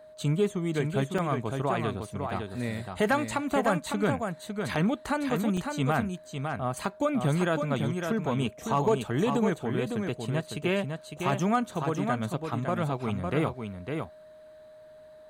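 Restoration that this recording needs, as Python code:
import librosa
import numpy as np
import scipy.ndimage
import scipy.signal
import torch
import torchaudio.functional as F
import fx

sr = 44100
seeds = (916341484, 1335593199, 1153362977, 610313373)

y = fx.fix_declip(x, sr, threshold_db=-15.5)
y = fx.notch(y, sr, hz=620.0, q=30.0)
y = fx.fix_interpolate(y, sr, at_s=(1.18, 5.57), length_ms=4.3)
y = fx.fix_echo_inverse(y, sr, delay_ms=555, level_db=-5.5)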